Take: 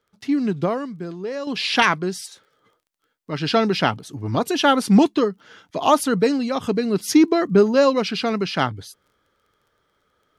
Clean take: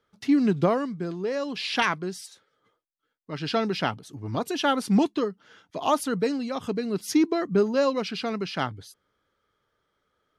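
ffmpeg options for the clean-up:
ffmpeg -i in.wav -af "adeclick=threshold=4,asetnsamples=nb_out_samples=441:pad=0,asendcmd='1.47 volume volume -7dB',volume=0dB" out.wav

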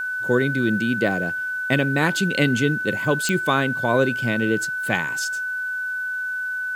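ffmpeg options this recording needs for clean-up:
ffmpeg -i in.wav -af "adeclick=threshold=4,bandreject=frequency=1500:width=30,agate=range=-21dB:threshold=-19dB" out.wav

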